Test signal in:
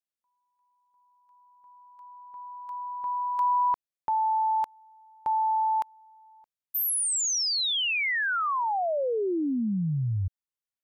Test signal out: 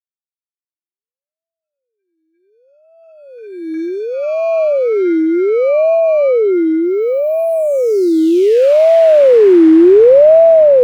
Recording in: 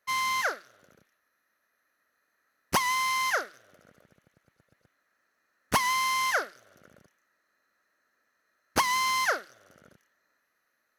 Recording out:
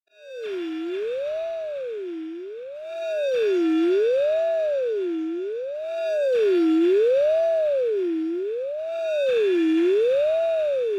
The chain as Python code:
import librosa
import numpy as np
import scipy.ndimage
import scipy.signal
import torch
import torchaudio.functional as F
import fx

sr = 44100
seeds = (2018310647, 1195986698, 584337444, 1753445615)

p1 = fx.bin_expand(x, sr, power=2.0)
p2 = scipy.signal.sosfilt(scipy.signal.butter(2, 130.0, 'highpass', fs=sr, output='sos'), p1)
p3 = fx.schmitt(p2, sr, flips_db=-30.5)
p4 = p2 + (p3 * librosa.db_to_amplitude(-10.0))
p5 = fx.lowpass(p4, sr, hz=3100.0, slope=6)
p6 = fx.auto_swell(p5, sr, attack_ms=338.0)
p7 = np.abs(p6)
p8 = fx.peak_eq(p7, sr, hz=1700.0, db=10.0, octaves=1.8)
p9 = p8 + fx.echo_swing(p8, sr, ms=820, ratio=1.5, feedback_pct=44, wet_db=-3, dry=0)
p10 = fx.rev_schroeder(p9, sr, rt60_s=4.0, comb_ms=25, drr_db=-8.0)
p11 = fx.ring_lfo(p10, sr, carrier_hz=490.0, swing_pct=35, hz=0.67)
y = p11 * librosa.db_to_amplitude(-12.5)